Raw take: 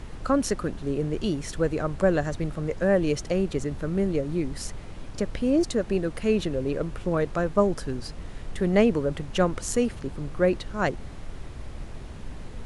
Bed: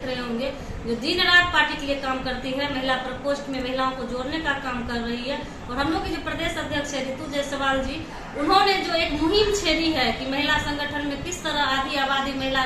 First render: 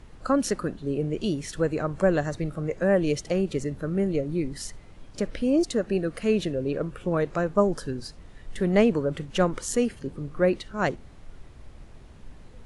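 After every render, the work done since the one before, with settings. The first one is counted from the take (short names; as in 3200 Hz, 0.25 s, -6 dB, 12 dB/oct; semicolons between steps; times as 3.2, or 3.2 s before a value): noise print and reduce 9 dB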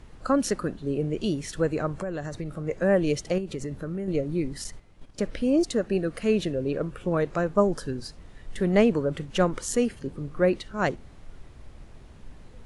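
1.92–2.67 compressor, threshold -28 dBFS; 3.38–4.08 compressor, threshold -28 dBFS; 4.64–6.06 gate -42 dBFS, range -8 dB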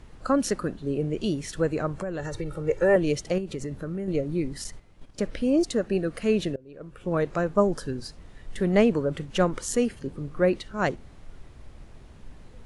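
2.19–2.96 comb 2.2 ms, depth 100%; 6.56–7.16 fade in quadratic, from -23.5 dB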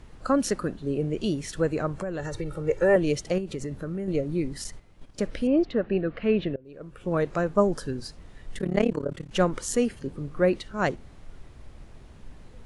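5.47–6.65 LPF 3300 Hz 24 dB/oct; 8.58–9.31 AM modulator 35 Hz, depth 90%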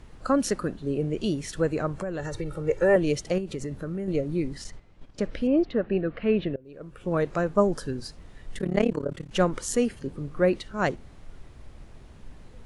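4.55–6.54 air absorption 67 m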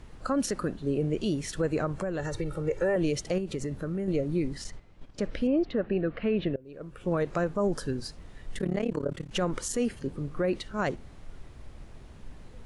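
limiter -19 dBFS, peak gain reduction 10 dB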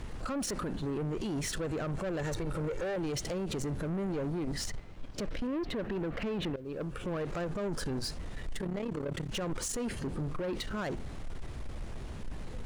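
limiter -29.5 dBFS, peak gain reduction 10.5 dB; sample leveller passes 2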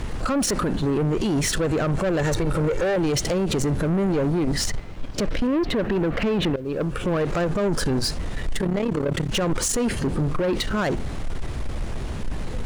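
gain +12 dB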